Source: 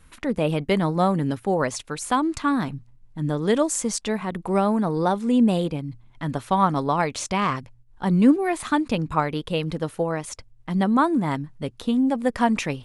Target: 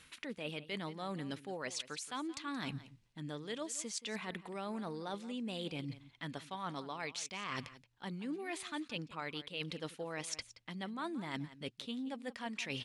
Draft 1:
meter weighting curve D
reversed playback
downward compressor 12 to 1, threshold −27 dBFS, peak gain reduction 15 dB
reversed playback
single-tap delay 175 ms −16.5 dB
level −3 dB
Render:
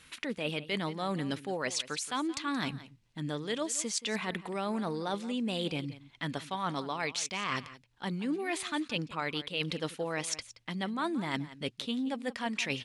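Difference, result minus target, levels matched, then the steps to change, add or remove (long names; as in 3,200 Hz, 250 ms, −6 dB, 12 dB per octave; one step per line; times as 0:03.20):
downward compressor: peak gain reduction −8 dB
change: downward compressor 12 to 1, threshold −35.5 dBFS, peak gain reduction 23 dB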